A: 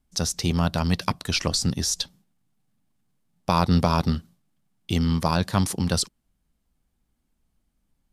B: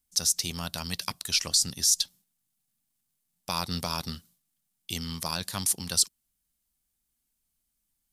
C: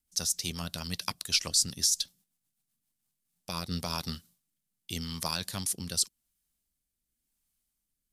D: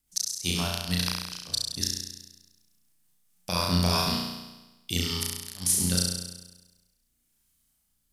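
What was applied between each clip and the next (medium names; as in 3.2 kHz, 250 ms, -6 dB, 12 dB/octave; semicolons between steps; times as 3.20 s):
pre-emphasis filter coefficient 0.9; trim +5 dB
rotary cabinet horn 8 Hz, later 0.9 Hz, at 2.60 s
inverted gate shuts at -17 dBFS, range -36 dB; flutter echo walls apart 5.8 m, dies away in 1.1 s; trim +5 dB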